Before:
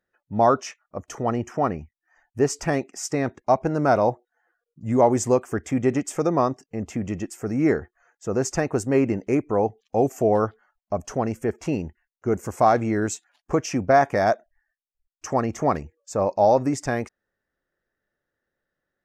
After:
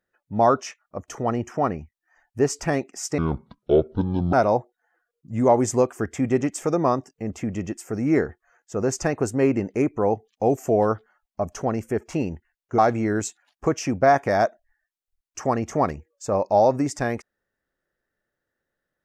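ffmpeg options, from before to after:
-filter_complex "[0:a]asplit=4[a][b][c][d];[a]atrim=end=3.184[e];[b]atrim=start=3.18:end=3.86,asetpts=PTS-STARTPTS,asetrate=26019,aresample=44100,atrim=end_sample=50827,asetpts=PTS-STARTPTS[f];[c]atrim=start=3.856:end=12.312[g];[d]atrim=start=12.648[h];[e][f]acrossfade=d=0.004:c1=hsin:c2=hsin[i];[i][g]acrossfade=d=0.004:c1=hsin:c2=hsin[j];[j][h]acrossfade=d=0.004:c1=hsin:c2=hsin"

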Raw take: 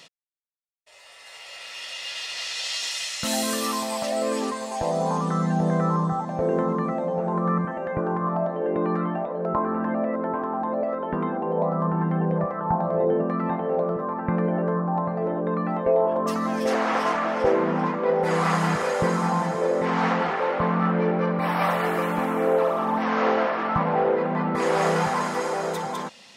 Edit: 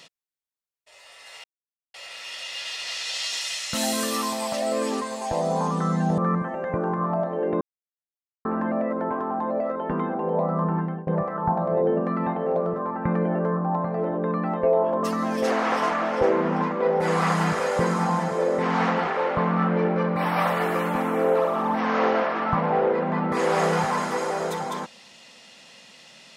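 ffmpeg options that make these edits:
-filter_complex "[0:a]asplit=6[a][b][c][d][e][f];[a]atrim=end=1.44,asetpts=PTS-STARTPTS,afade=t=out:st=1.436:d=0.004:c=hsin,apad=pad_dur=0.5[g];[b]atrim=start=1.44:end=5.682,asetpts=PTS-STARTPTS,afade=t=in:d=0.004:c=hsin[h];[c]atrim=start=7.408:end=8.84,asetpts=PTS-STARTPTS,afade=t=out:st=1.428:d=0.004:c=hsin[i];[d]atrim=start=8.84:end=9.68,asetpts=PTS-STARTPTS,volume=0[j];[e]atrim=start=9.68:end=12.3,asetpts=PTS-STARTPTS,afade=t=in:d=0.004:c=hsin,afade=t=out:st=2.29:d=0.33:silence=0.0841395[k];[f]atrim=start=12.3,asetpts=PTS-STARTPTS,afade=t=in:d=0.004:c=hsin:silence=0.0841395[l];[g][h]concat=n=2:v=0:a=1[m];[i][j][k][l]concat=n=4:v=0:a=1[n];[m][n]acrossfade=d=0.004:c1=hsin:c2=hsin"

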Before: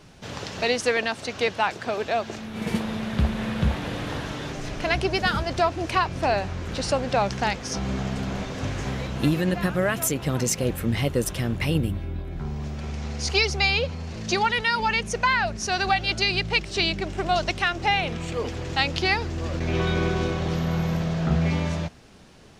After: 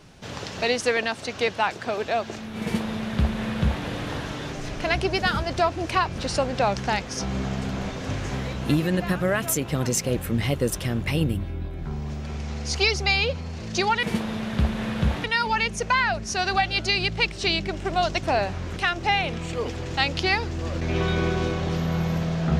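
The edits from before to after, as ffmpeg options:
-filter_complex "[0:a]asplit=6[a][b][c][d][e][f];[a]atrim=end=6.182[g];[b]atrim=start=6.718:end=14.572[h];[c]atrim=start=2.628:end=3.842[i];[d]atrim=start=14.568:end=17.562[j];[e]atrim=start=6.178:end=6.722[k];[f]atrim=start=17.558[l];[g][h]acrossfade=d=0.004:c1=hsin:c2=hsin[m];[m][i]acrossfade=d=0.004:c1=hsin:c2=hsin[n];[n][j]acrossfade=d=0.004:c1=hsin:c2=hsin[o];[o][k]acrossfade=d=0.004:c1=hsin:c2=hsin[p];[p][l]acrossfade=d=0.004:c1=hsin:c2=hsin"

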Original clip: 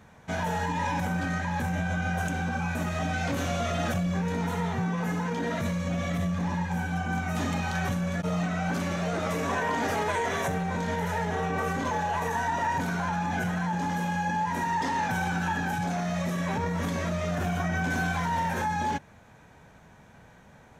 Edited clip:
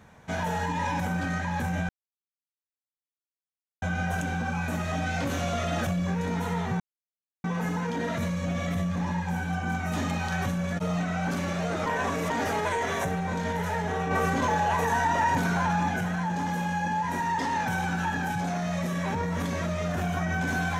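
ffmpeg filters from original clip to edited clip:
-filter_complex "[0:a]asplit=7[a][b][c][d][e][f][g];[a]atrim=end=1.89,asetpts=PTS-STARTPTS,afade=t=out:st=1.886:d=0.004:c=hsin,apad=pad_dur=1.93[h];[b]atrim=start=1.89:end=4.87,asetpts=PTS-STARTPTS,afade=t=in:d=0.004:c=hsin,afade=t=out:st=2.976:d=0.004:c=hsin,apad=pad_dur=0.64[i];[c]atrim=start=4.87:end=9.292,asetpts=PTS-STARTPTS,afade=t=in:d=0.004:c=hsin[j];[d]atrim=start=9.288:end=9.732,asetpts=PTS-STARTPTS,areverse[k];[e]atrim=start=9.728:end=11.542[l];[f]atrim=start=11.538:end=13.322,asetpts=PTS-STARTPTS,volume=3.5dB[m];[g]atrim=start=13.318[n];[h][i][j]concat=n=3:v=0:a=1[o];[o][k]acrossfade=d=0.004:c1=hsin:c2=hsin[p];[p][l]acrossfade=d=0.004:c1=hsin:c2=hsin[q];[q][m]acrossfade=d=0.004:c1=hsin:c2=hsin[r];[r][n]acrossfade=d=0.004:c1=hsin:c2=hsin"

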